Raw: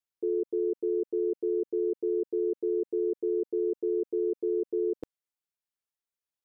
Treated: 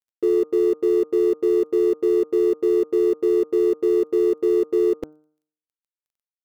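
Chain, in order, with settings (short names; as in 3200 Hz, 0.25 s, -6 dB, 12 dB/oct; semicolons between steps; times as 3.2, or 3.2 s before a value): G.711 law mismatch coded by mu; de-hum 152.7 Hz, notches 10; gain +9 dB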